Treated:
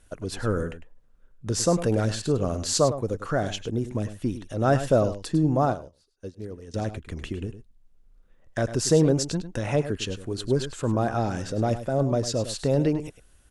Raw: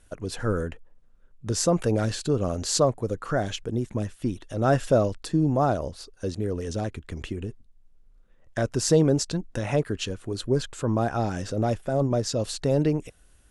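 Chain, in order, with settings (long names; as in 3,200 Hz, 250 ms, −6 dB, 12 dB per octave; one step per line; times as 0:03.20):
single-tap delay 102 ms −12 dB
0:05.65–0:06.74: expander for the loud parts 2.5 to 1, over −37 dBFS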